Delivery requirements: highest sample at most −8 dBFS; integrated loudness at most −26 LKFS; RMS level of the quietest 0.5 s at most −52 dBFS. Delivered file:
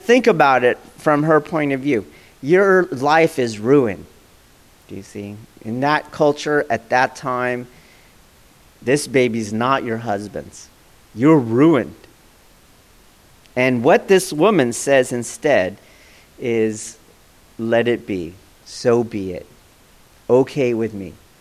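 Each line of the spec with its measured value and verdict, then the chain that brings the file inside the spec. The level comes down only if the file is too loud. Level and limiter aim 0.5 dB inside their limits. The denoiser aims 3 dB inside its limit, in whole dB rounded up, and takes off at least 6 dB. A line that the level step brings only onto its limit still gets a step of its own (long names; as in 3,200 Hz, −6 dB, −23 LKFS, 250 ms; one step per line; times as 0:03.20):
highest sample −2.5 dBFS: out of spec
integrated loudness −17.5 LKFS: out of spec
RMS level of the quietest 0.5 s −50 dBFS: out of spec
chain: level −9 dB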